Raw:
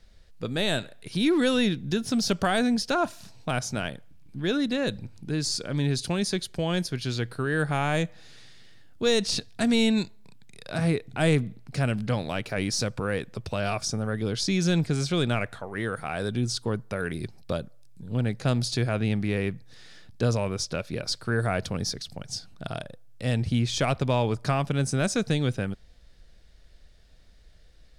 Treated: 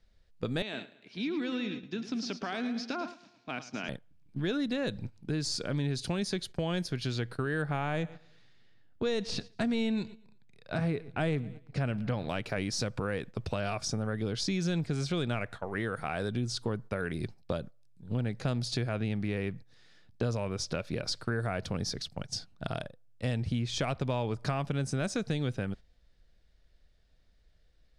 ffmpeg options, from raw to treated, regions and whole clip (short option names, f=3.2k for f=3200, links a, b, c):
-filter_complex "[0:a]asettb=1/sr,asplit=3[a][b][c];[a]atrim=end=0.624[d];[b]atrim=start=0.62:end=3.89,asetpts=PTS-STARTPTS,afade=t=in:d=0.004:c=qsin,afade=t=out:st=3.266:d=0.004:c=qsin,acompressor=threshold=-36dB:ratio=2.5:attack=3.2:release=140:knee=1:detection=peak,highpass=f=160:w=0.5412,highpass=f=160:w=1.3066,equalizer=f=160:t=q:w=4:g=-6,equalizer=f=270:t=q:w=4:g=4,equalizer=f=550:t=q:w=4:g=-5,equalizer=f=2.4k:t=q:w=4:g=6,lowpass=f=6.2k:w=0.5412,lowpass=f=6.2k:w=1.3066,aecho=1:1:109|218|327|436|545:0.316|0.158|0.0791|0.0395|0.0198,atrim=end_sample=144207[e];[c]atrim=start=3.886[f];[d][e]acrossfade=d=0.004:c1=hsin:c2=qsin[g];[g][f]acrossfade=d=0.004:c1=qsin:c2=hsin,asettb=1/sr,asplit=3[h][i][j];[h]atrim=end=7.624[k];[i]atrim=start=7.62:end=12.29,asetpts=PTS-STARTPTS,afade=t=in:d=0.004:c=qsin,afade=t=out:st=4.666:d=0.004:c=qsin,lowpass=f=3.4k:p=1,aecho=1:1:117|234|351:0.075|0.0367|0.018,atrim=end_sample=205947[l];[j]atrim=start=12.286[m];[k][l]acrossfade=d=0.004:c1=hsin:c2=qsin[n];[n][m]acrossfade=d=0.004:c1=qsin:c2=hsin,agate=range=-12dB:threshold=-38dB:ratio=16:detection=peak,highshelf=f=8.4k:g=-10.5,acompressor=threshold=-32dB:ratio=3,volume=1.5dB"